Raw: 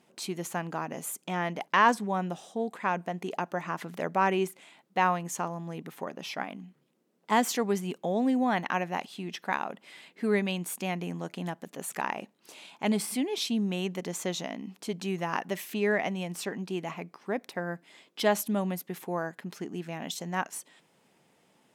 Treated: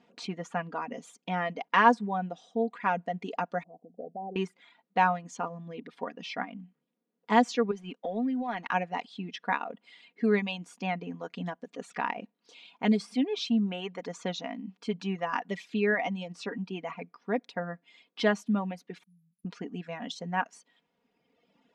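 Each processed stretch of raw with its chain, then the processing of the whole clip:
0:03.63–0:04.36: Chebyshev low-pass filter 750 Hz, order 6 + low-shelf EQ 360 Hz −11 dB + downward compressor 3 to 1, threshold −35 dBFS
0:07.71–0:08.70: mu-law and A-law mismatch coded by A + low shelf with overshoot 160 Hz −10.5 dB, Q 1.5 + downward compressor 4 to 1, threshold −29 dBFS
0:19.03–0:19.45: linear-phase brick-wall band-stop 210–9,700 Hz + bass and treble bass −14 dB, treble +14 dB
whole clip: reverb reduction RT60 1.6 s; Bessel low-pass filter 3,900 Hz, order 4; comb filter 4.2 ms, depth 59%

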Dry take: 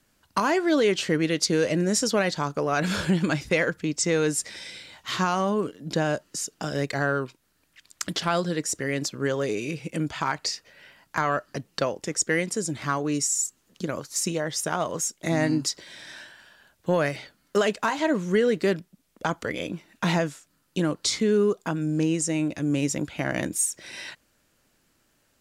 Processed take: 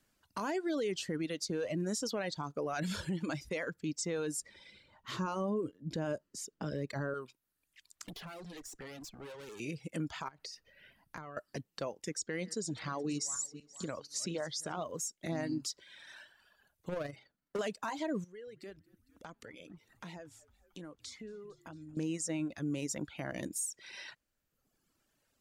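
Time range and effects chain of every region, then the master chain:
0:04.40–0:07.14: tilt shelving filter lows +4.5 dB, about 1,100 Hz + notch filter 730 Hz, Q 6.4 + one half of a high-frequency compander decoder only
0:08.05–0:09.60: tube saturation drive 37 dB, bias 0.7 + multiband upward and downward compressor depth 70%
0:10.28–0:11.37: low-shelf EQ 330 Hz +8.5 dB + downward compressor 16 to 1, threshold −33 dBFS + notch filter 7,400 Hz, Q 8.5
0:12.18–0:14.83: feedback delay that plays each chunk backwards 237 ms, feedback 48%, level −13 dB + low-pass filter 7,300 Hz + parametric band 4,300 Hz +6.5 dB 0.51 octaves
0:16.89–0:17.59: high-shelf EQ 2,100 Hz −9.5 dB + hard clipping −23 dBFS + amplitude modulation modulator 24 Hz, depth 25%
0:18.24–0:21.97: downward compressor 2.5 to 1, threshold −44 dBFS + echo with shifted repeats 227 ms, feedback 63%, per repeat −60 Hz, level −16 dB
whole clip: reverb reduction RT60 1.2 s; dynamic equaliser 2,000 Hz, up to −4 dB, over −36 dBFS, Q 0.76; brickwall limiter −20 dBFS; level −7.5 dB

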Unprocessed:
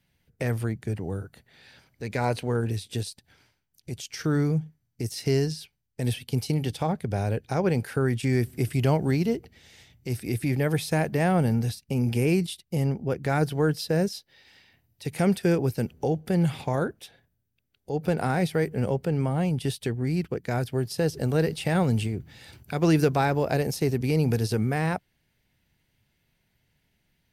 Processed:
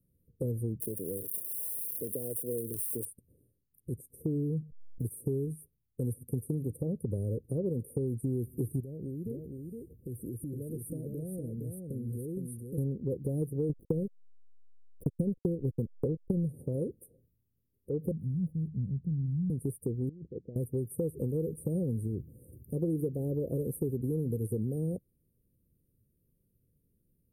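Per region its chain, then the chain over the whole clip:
0:00.80–0:03.05: spike at every zero crossing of −25 dBFS + high-pass filter 660 Hz 6 dB per octave + multiband upward and downward compressor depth 70%
0:04.62–0:05.05: slack as between gear wheels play −45 dBFS + phaser with its sweep stopped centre 1,400 Hz, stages 6 + background raised ahead of every attack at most 52 dB per second
0:08.80–0:12.78: downward compressor 8 to 1, threshold −34 dBFS + single-tap delay 464 ms −4.5 dB
0:13.69–0:16.49: bass and treble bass +5 dB, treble −1 dB + transient designer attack +8 dB, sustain −5 dB + slack as between gear wheels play −25.5 dBFS
0:18.11–0:19.50: Chebyshev band-stop filter 190–7,900 Hz, order 3 + linearly interpolated sample-rate reduction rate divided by 6×
0:20.09–0:20.56: compressor whose output falls as the input rises −30 dBFS, ratio −0.5 + transistor ladder low-pass 1,600 Hz, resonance 55%
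whole clip: Chebyshev band-stop filter 520–9,300 Hz, order 5; dynamic equaliser 1,700 Hz, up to +6 dB, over −50 dBFS, Q 0.88; downward compressor 5 to 1, threshold −29 dBFS

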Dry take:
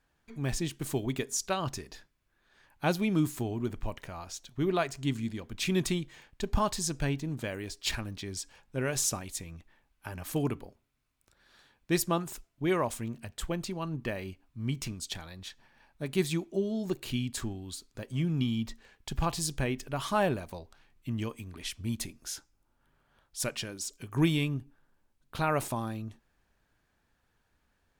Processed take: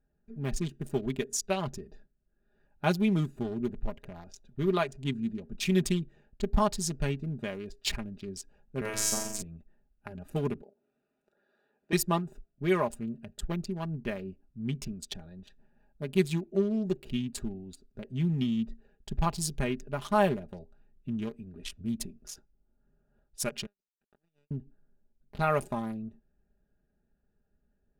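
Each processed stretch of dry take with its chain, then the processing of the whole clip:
0:08.81–0:09.42: phases set to zero 108 Hz + flutter between parallel walls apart 7.4 metres, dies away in 1.1 s
0:10.62–0:11.93: high-pass filter 390 Hz + high-shelf EQ 6,000 Hz −11 dB + upward compression, threshold −55 dBFS
0:23.66–0:24.51: downward compressor 4 to 1, threshold −41 dBFS + resonant band-pass 1,800 Hz, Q 0.89 + power curve on the samples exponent 3
whole clip: adaptive Wiener filter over 41 samples; comb filter 4.9 ms, depth 62%

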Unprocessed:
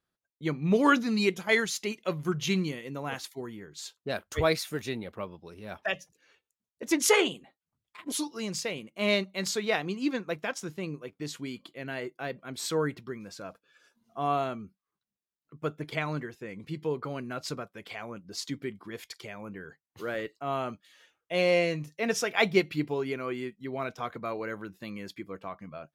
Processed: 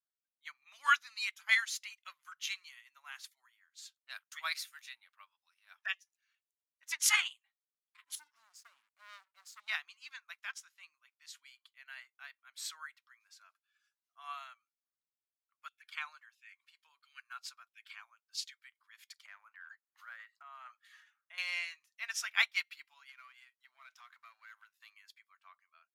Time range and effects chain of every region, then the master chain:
0:08.15–0:09.68: drawn EQ curve 310 Hz 0 dB, 660 Hz −8 dB, 1,200 Hz −21 dB, 2,400 Hz −27 dB, 9,900 Hz −19 dB + leveller curve on the samples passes 3
0:15.68–0:18.61: low-shelf EQ 460 Hz −10 dB + notch filter 2,000 Hz, Q 9 + auto-filter high-pass saw down 1.5 Hz 230–3,400 Hz
0:19.25–0:21.38: flat-topped bell 850 Hz +10 dB 2.7 octaves + transient designer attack +1 dB, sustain +7 dB + downward compressor 2.5 to 1, threshold −35 dBFS
0:23.09–0:24.94: downward compressor 5 to 1, threshold −36 dBFS + leveller curve on the samples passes 1
whole clip: inverse Chebyshev high-pass filter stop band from 470 Hz, stop band 50 dB; expander for the loud parts 1.5 to 1, over −54 dBFS

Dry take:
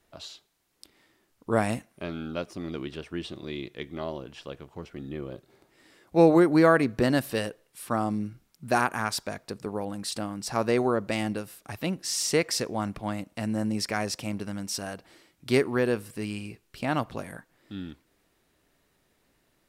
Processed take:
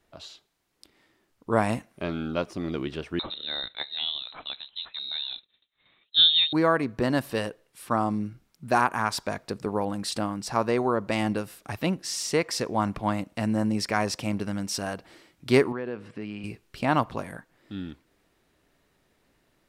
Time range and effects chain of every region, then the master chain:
0:03.19–0:06.53: downward expander −52 dBFS + voice inversion scrambler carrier 4,000 Hz
0:15.72–0:16.44: downward compressor 2.5 to 1, threshold −37 dBFS + band-pass filter 130–3,000 Hz
whole clip: dynamic equaliser 1,000 Hz, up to +6 dB, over −45 dBFS, Q 2.9; speech leveller within 4 dB 0.5 s; high-shelf EQ 6,300 Hz −6 dB

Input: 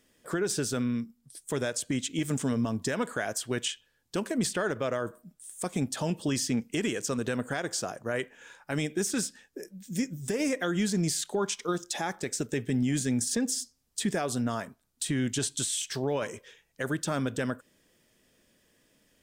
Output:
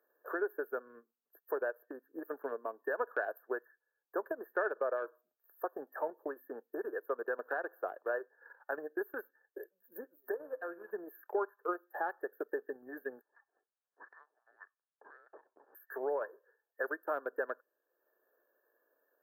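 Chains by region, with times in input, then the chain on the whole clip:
0:10.34–0:10.91: linear delta modulator 64 kbit/s, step −43.5 dBFS + tuned comb filter 57 Hz, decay 0.78 s
0:13.21–0:15.75: downward compressor 12 to 1, threshold −36 dBFS + voice inversion scrambler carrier 3,500 Hz
whole clip: brick-wall band-stop 1,800–12,000 Hz; Butterworth high-pass 390 Hz 36 dB per octave; transient designer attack +4 dB, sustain −8 dB; level −4 dB

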